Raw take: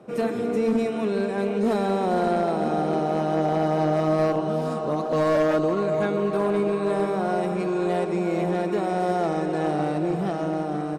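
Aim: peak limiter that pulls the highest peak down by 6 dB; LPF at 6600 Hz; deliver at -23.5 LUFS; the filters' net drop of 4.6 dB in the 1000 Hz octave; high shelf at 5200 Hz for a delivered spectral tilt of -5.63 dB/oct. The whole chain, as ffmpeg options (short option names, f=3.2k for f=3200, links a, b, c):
-af "lowpass=6.6k,equalizer=f=1k:t=o:g=-7,highshelf=f=5.2k:g=-5,volume=6dB,alimiter=limit=-15.5dB:level=0:latency=1"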